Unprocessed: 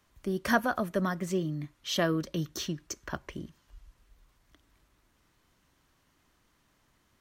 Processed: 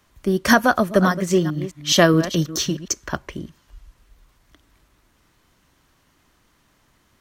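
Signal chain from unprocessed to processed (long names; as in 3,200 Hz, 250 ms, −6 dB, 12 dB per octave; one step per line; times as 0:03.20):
0:00.66–0:02.88: delay that plays each chunk backwards 211 ms, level −10 dB
dynamic equaliser 6,200 Hz, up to +5 dB, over −51 dBFS, Q 1.1
boost into a limiter +14 dB
expander for the loud parts 1.5 to 1, over −22 dBFS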